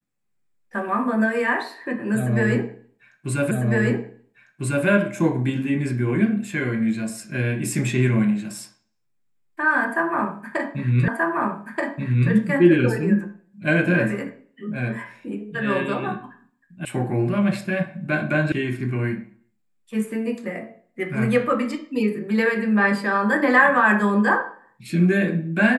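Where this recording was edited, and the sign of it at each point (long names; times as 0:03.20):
0:03.51: the same again, the last 1.35 s
0:11.08: the same again, the last 1.23 s
0:16.85: cut off before it has died away
0:18.52: cut off before it has died away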